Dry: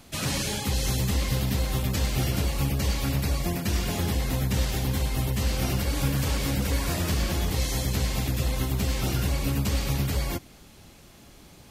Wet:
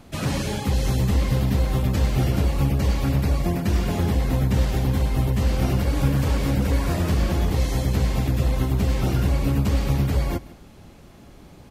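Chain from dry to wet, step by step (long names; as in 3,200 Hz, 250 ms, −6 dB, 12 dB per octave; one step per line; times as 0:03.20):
high-shelf EQ 2,100 Hz −11.5 dB
on a send: single-tap delay 157 ms −20 dB
on the sum: level +5.5 dB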